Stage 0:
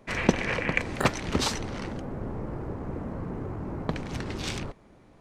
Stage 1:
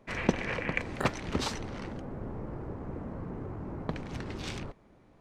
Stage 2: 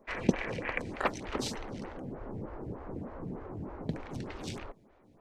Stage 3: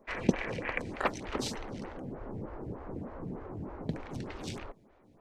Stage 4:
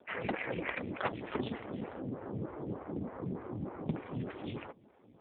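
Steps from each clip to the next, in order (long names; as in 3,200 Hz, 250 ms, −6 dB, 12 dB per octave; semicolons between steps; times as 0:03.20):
high-shelf EQ 4,700 Hz −5.5 dB; level −4.5 dB
phaser with staggered stages 3.3 Hz; level +1.5 dB
no processing that can be heard
wave folding −23 dBFS; level +3 dB; AMR narrowband 5.15 kbit/s 8,000 Hz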